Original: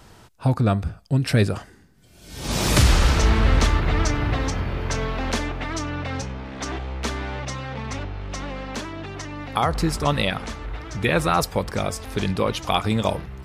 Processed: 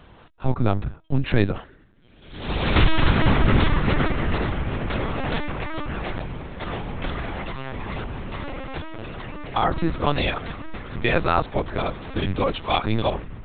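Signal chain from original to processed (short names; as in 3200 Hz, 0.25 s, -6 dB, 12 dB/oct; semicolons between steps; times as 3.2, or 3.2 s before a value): LPC vocoder at 8 kHz pitch kept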